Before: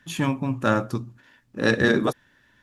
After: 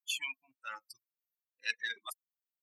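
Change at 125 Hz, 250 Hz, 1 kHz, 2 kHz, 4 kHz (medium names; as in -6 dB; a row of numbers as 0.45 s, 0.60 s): under -40 dB, under -40 dB, -19.5 dB, -12.0 dB, -6.0 dB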